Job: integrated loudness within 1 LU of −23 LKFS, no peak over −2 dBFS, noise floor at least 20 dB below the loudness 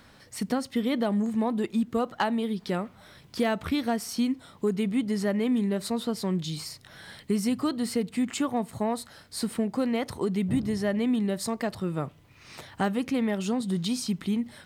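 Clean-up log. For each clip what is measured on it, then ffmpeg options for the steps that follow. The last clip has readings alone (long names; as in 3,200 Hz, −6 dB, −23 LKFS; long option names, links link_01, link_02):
integrated loudness −28.5 LKFS; sample peak −14.5 dBFS; target loudness −23.0 LKFS
→ -af "volume=5.5dB"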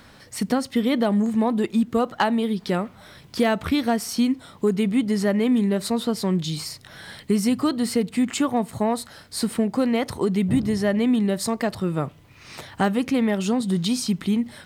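integrated loudness −23.0 LKFS; sample peak −9.0 dBFS; background noise floor −50 dBFS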